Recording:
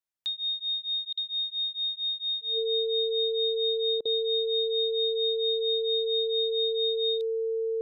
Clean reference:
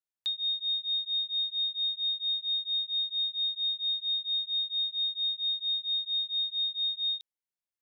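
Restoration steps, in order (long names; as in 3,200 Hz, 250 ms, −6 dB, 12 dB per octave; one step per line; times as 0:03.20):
notch filter 450 Hz, Q 30
repair the gap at 0:01.13/0:04.01, 42 ms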